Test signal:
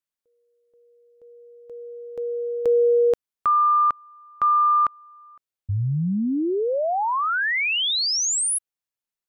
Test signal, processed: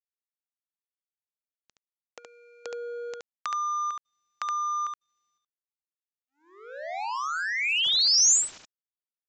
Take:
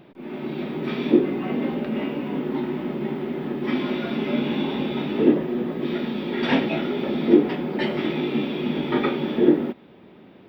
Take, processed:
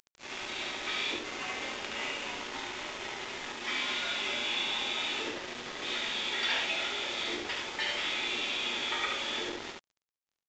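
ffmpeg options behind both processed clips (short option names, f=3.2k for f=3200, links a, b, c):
-af "highpass=770,acompressor=threshold=-46dB:ratio=2.5:attack=27:release=82:knee=1:detection=rms,crystalizer=i=7.5:c=0,acrusher=bits=5:mix=0:aa=0.5,aecho=1:1:71:0.708,aresample=16000,aresample=44100"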